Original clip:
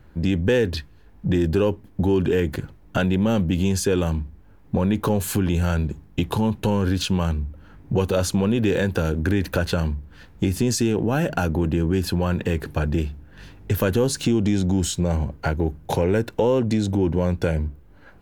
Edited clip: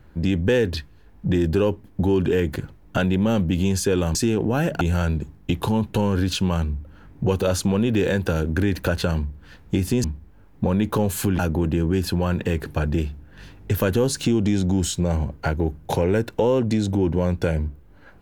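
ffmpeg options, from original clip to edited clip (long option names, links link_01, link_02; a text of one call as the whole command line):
ffmpeg -i in.wav -filter_complex "[0:a]asplit=5[link_01][link_02][link_03][link_04][link_05];[link_01]atrim=end=4.152[link_06];[link_02]atrim=start=10.728:end=11.392[link_07];[link_03]atrim=start=5.498:end=10.732[link_08];[link_04]atrim=start=4.148:end=5.502[link_09];[link_05]atrim=start=11.388[link_10];[link_06][link_07]acrossfade=duration=0.004:curve1=hsin:curve2=hsin[link_11];[link_11][link_08]acrossfade=duration=0.004:curve1=hsin:curve2=hsin[link_12];[link_12][link_09]acrossfade=duration=0.004:curve1=hsin:curve2=hsin[link_13];[link_13][link_10]acrossfade=duration=0.004:curve1=hsin:curve2=hsin" out.wav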